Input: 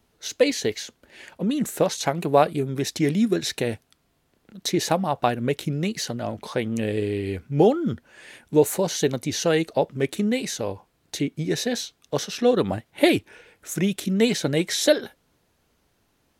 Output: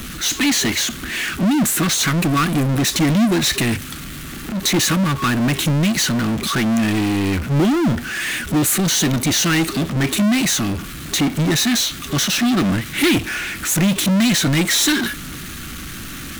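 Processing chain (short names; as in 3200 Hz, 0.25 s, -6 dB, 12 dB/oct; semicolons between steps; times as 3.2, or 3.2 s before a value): thirty-one-band EQ 100 Hz -7 dB, 400 Hz -10 dB, 5000 Hz -5 dB; FFT band-reject 400–1100 Hz; power-law curve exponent 0.35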